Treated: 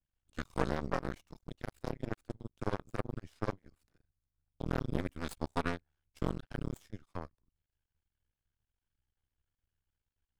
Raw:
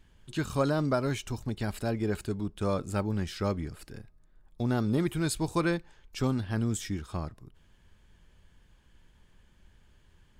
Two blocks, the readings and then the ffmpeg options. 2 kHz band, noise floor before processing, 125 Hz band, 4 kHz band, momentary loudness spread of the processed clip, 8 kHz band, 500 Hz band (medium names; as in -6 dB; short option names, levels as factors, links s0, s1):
-6.0 dB, -62 dBFS, -10.0 dB, -10.5 dB, 11 LU, -17.0 dB, -8.0 dB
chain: -af "afreqshift=-82,aeval=exprs='0.211*(cos(1*acos(clip(val(0)/0.211,-1,1)))-cos(1*PI/2))+0.0266*(cos(3*acos(clip(val(0)/0.211,-1,1)))-cos(3*PI/2))+0.0168*(cos(7*acos(clip(val(0)/0.211,-1,1)))-cos(7*PI/2))':c=same,aeval=exprs='max(val(0),0)':c=same,adynamicequalizer=threshold=0.00251:dfrequency=2400:dqfactor=0.7:tfrequency=2400:tqfactor=0.7:attack=5:release=100:ratio=0.375:range=2.5:mode=cutabove:tftype=highshelf"